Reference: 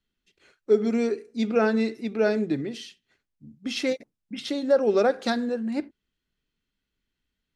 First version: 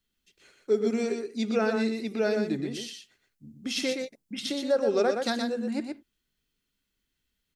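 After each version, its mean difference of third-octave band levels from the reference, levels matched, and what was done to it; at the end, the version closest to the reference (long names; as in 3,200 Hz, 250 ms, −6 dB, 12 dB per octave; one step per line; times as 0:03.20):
5.0 dB: high-shelf EQ 5,000 Hz +10.5 dB
single-tap delay 121 ms −5.5 dB
in parallel at −3 dB: downward compressor, threshold −31 dBFS, peak gain reduction 15.5 dB
on the sum: level −6 dB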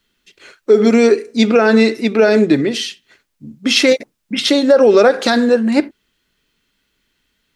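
3.0 dB: low-shelf EQ 240 Hz −10 dB
notch filter 760 Hz, Q 14
boost into a limiter +19.5 dB
level −1 dB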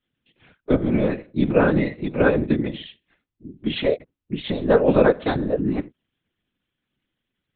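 8.5 dB: one-pitch LPC vocoder at 8 kHz 250 Hz
low shelf with overshoot 120 Hz −10 dB, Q 3
random phases in short frames
level +5 dB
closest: second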